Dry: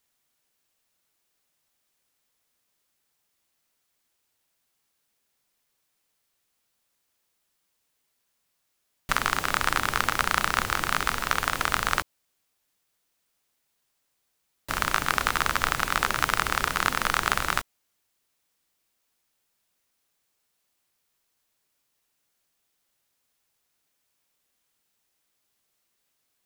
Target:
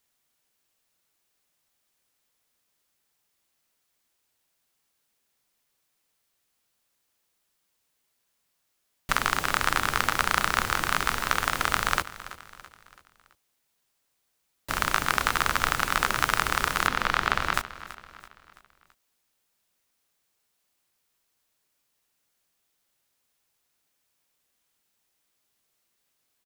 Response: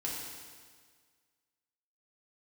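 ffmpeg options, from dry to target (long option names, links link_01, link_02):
-filter_complex "[0:a]asettb=1/sr,asplit=3[link_01][link_02][link_03];[link_01]atrim=end=16.874[link_04];[link_02]atrim=start=16.87:end=17.54,asetpts=PTS-STARTPTS,afade=type=in:duration=0.004:curve=qsin,afade=type=out:start_time=0.666:duration=0.004:curve=qsin,acrossover=split=5200[link_05][link_06];[link_06]acompressor=threshold=-46dB:ratio=4:attack=1:release=60[link_07];[link_05][link_07]amix=inputs=2:normalize=0[link_08];[link_03]atrim=start=17.536[link_09];[link_04][link_08]acrossfade=duration=0.004:curve1=hsin:curve2=qsin[link_10];[link_10][link_09]acrossfade=duration=0.004:curve1=qsin:curve2=hsin,aecho=1:1:332|664|996|1328:0.158|0.0729|0.0335|0.0154"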